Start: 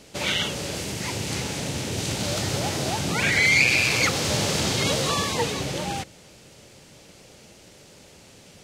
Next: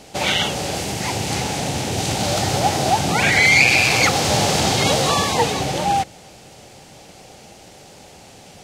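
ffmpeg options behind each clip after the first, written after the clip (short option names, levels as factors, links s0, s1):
-af "equalizer=f=770:w=4:g=11,volume=1.78"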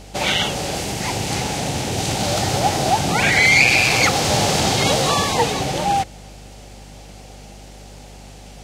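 -af "aeval=exprs='val(0)+0.01*(sin(2*PI*50*n/s)+sin(2*PI*2*50*n/s)/2+sin(2*PI*3*50*n/s)/3+sin(2*PI*4*50*n/s)/4+sin(2*PI*5*50*n/s)/5)':c=same"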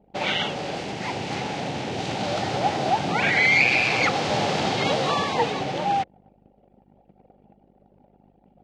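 -af "highpass=150,lowpass=3500,anlmdn=1.58,volume=0.631"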